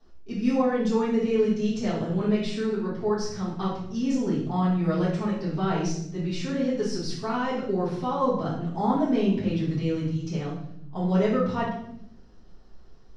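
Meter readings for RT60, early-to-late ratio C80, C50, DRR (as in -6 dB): 0.75 s, 7.0 dB, 2.5 dB, -9.5 dB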